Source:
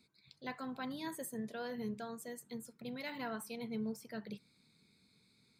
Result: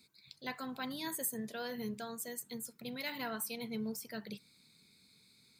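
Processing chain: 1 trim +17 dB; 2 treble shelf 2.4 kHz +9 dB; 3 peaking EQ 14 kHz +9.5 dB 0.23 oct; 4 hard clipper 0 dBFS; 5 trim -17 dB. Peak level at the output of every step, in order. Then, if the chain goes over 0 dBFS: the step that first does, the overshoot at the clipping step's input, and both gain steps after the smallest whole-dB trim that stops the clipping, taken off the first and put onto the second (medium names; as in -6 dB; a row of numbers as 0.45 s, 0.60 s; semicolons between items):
-11.0 dBFS, -5.5 dBFS, -5.5 dBFS, -5.5 dBFS, -22.5 dBFS; nothing clips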